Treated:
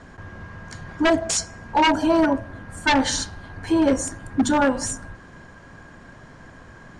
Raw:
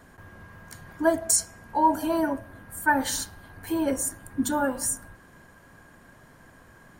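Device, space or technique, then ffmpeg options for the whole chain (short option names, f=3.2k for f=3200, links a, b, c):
synthesiser wavefolder: -af "lowshelf=f=200:g=3,aeval=exprs='0.126*(abs(mod(val(0)/0.126+3,4)-2)-1)':c=same,lowpass=f=6.9k:w=0.5412,lowpass=f=6.9k:w=1.3066,volume=7dB"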